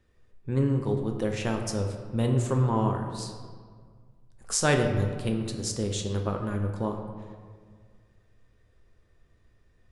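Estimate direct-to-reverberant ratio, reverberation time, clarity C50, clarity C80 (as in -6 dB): 3.0 dB, 1.9 s, 6.0 dB, 7.5 dB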